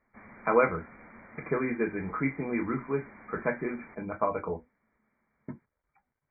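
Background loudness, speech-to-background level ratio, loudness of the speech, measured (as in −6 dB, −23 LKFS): −51.0 LKFS, 20.0 dB, −31.0 LKFS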